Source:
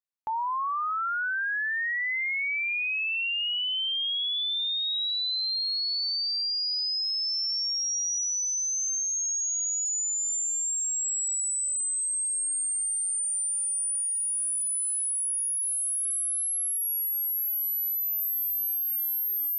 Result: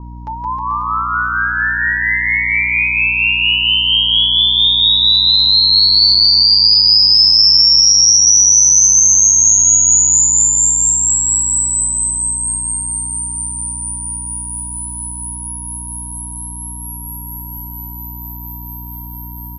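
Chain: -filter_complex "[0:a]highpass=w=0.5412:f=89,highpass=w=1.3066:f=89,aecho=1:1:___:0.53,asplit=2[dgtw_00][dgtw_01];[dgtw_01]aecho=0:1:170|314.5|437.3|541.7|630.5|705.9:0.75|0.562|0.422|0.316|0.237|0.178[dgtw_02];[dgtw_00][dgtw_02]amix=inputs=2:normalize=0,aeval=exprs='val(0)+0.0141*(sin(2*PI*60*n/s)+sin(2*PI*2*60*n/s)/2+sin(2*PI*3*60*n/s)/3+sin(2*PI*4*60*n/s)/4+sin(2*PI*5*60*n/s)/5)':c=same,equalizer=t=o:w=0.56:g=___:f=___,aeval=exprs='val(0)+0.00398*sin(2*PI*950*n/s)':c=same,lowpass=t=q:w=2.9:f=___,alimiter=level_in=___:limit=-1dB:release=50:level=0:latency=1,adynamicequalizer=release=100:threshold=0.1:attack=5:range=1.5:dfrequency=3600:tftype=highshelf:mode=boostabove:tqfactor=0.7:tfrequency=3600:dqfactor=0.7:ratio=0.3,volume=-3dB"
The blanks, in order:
6.9, -10, 750, 5.7k, 11dB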